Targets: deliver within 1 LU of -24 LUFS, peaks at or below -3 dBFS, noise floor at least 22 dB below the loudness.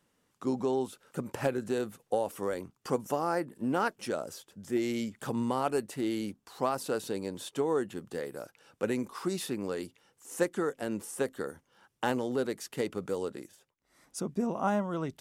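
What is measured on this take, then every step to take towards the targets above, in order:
loudness -33.5 LUFS; peak -15.0 dBFS; loudness target -24.0 LUFS
-> gain +9.5 dB

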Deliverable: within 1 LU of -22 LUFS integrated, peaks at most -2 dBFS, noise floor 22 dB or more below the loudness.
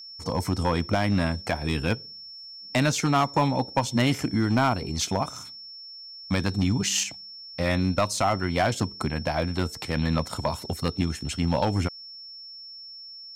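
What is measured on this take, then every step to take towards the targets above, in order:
clipped 0.8%; flat tops at -15.5 dBFS; steady tone 5400 Hz; tone level -40 dBFS; loudness -26.0 LUFS; peak -15.5 dBFS; loudness target -22.0 LUFS
-> clip repair -15.5 dBFS; notch 5400 Hz, Q 30; gain +4 dB

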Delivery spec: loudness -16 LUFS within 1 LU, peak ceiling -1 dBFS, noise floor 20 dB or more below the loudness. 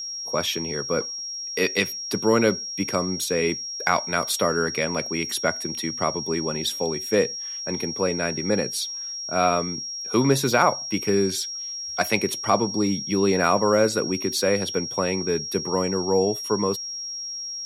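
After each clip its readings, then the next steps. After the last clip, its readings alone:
steady tone 5600 Hz; tone level -30 dBFS; loudness -23.5 LUFS; peak -5.5 dBFS; loudness target -16.0 LUFS
-> notch 5600 Hz, Q 30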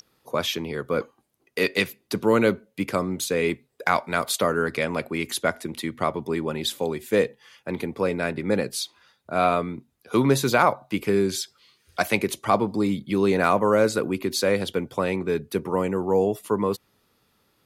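steady tone none; loudness -24.5 LUFS; peak -6.0 dBFS; loudness target -16.0 LUFS
-> gain +8.5 dB; limiter -1 dBFS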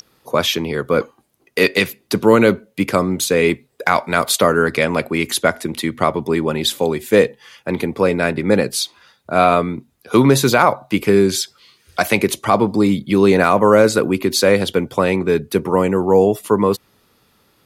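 loudness -16.5 LUFS; peak -1.0 dBFS; noise floor -59 dBFS

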